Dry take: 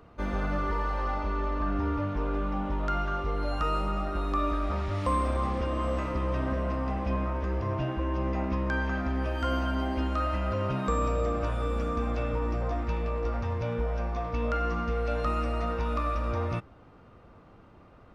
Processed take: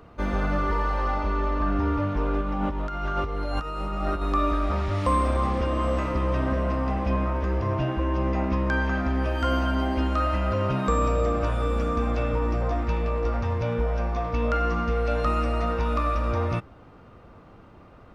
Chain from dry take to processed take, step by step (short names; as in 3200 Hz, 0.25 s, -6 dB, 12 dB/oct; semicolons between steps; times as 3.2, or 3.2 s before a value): 2.41–4.23 negative-ratio compressor -31 dBFS, ratio -0.5; gain +4.5 dB